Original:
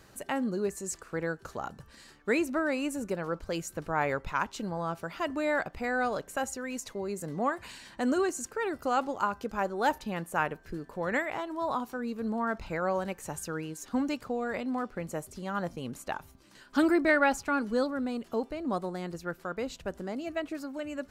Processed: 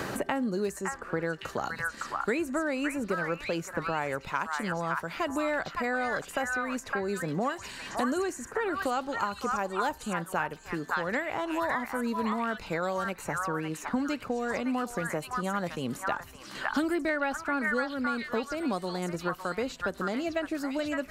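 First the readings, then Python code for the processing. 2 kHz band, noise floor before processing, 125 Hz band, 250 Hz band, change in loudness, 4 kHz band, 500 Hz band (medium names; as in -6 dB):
+2.5 dB, -57 dBFS, +1.5 dB, 0.0 dB, +0.5 dB, +3.0 dB, 0.0 dB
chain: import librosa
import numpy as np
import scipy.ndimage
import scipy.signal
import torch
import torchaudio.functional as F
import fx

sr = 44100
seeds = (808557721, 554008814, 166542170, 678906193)

y = fx.echo_stepped(x, sr, ms=561, hz=1400.0, octaves=1.4, feedback_pct=70, wet_db=0.0)
y = fx.band_squash(y, sr, depth_pct=100)
y = y * librosa.db_to_amplitude(-1.0)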